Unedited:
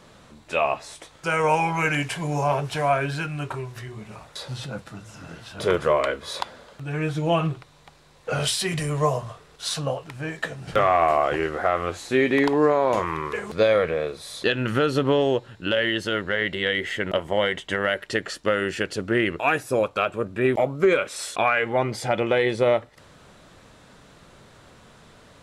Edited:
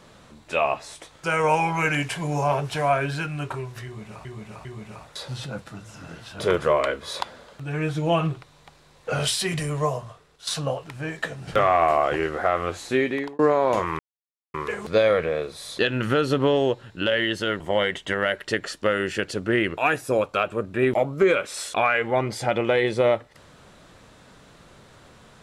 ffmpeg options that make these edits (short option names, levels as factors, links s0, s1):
-filter_complex "[0:a]asplit=7[s0][s1][s2][s3][s4][s5][s6];[s0]atrim=end=4.252[s7];[s1]atrim=start=3.848:end=4.252[s8];[s2]atrim=start=3.848:end=9.67,asetpts=PTS-STARTPTS,afade=t=out:st=4.862:d=0.96:silence=0.316228[s9];[s3]atrim=start=9.67:end=12.59,asetpts=PTS-STARTPTS,afade=t=in:d=0.004:c=hsin:silence=0.316228,afade=t=out:st=2.43:d=0.49[s10];[s4]atrim=start=12.59:end=13.19,asetpts=PTS-STARTPTS,afade=t=in:d=0.004:c=hsin,afade=t=out:st=0.596:d=0.004:c=hsin,apad=pad_dur=0.55[s11];[s5]atrim=start=13.19:end=16.252,asetpts=PTS-STARTPTS,afade=t=in:d=0.004:c=hsin[s12];[s6]atrim=start=17.218[s13];[s7][s8]acrossfade=d=0.004:c1=hsin:c2=hsin[s14];[s9][s10][s11][s12]concat=n=4:v=0:a=1[s15];[s14][s15]acrossfade=d=0.004:c1=hsin:c2=hsin[s16];[s16][s13]acrossfade=d=0.004:c1=hsin:c2=hsin"